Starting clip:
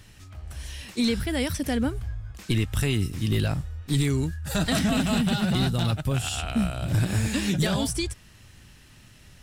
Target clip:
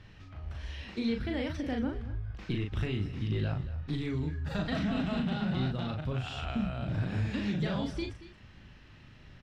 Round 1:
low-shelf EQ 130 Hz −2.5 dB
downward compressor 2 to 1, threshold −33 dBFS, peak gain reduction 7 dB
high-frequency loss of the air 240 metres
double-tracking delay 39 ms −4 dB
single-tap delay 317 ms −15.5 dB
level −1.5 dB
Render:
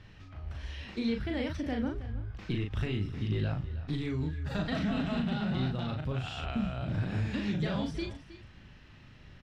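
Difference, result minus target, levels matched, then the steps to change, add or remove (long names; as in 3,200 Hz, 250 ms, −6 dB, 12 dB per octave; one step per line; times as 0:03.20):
echo 88 ms late
change: single-tap delay 229 ms −15.5 dB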